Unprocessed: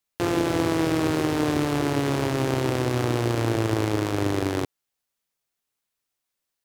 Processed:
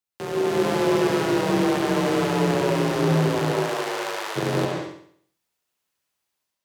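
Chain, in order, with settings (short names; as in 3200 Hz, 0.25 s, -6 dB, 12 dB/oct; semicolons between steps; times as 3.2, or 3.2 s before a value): 3.5–4.35 HPF 370 Hz -> 1200 Hz 12 dB/oct; AGC gain up to 9.5 dB; frequency shift +38 Hz; flutter echo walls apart 11.8 m, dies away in 0.59 s; reverb, pre-delay 96 ms, DRR 0.5 dB; gain -8 dB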